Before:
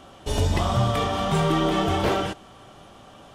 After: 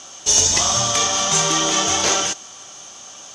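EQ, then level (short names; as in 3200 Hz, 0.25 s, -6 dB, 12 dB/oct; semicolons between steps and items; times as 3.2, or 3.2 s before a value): synth low-pass 6300 Hz, resonance Q 9.6; tilt +3.5 dB/oct; +2.5 dB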